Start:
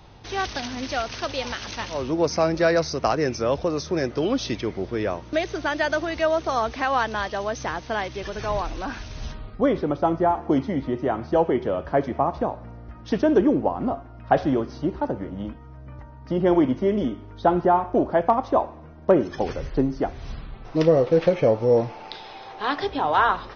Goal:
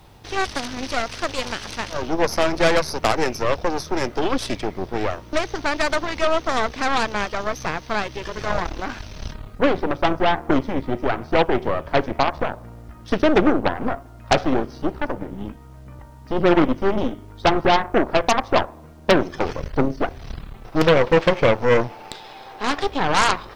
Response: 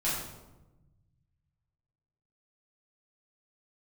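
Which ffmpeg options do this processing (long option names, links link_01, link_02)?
-af "aeval=exprs='0.501*(cos(1*acos(clip(val(0)/0.501,-1,1)))-cos(1*PI/2))+0.178*(cos(6*acos(clip(val(0)/0.501,-1,1)))-cos(6*PI/2))+0.224*(cos(8*acos(clip(val(0)/0.501,-1,1)))-cos(8*PI/2))':channel_layout=same,acrusher=bits=9:mix=0:aa=0.000001"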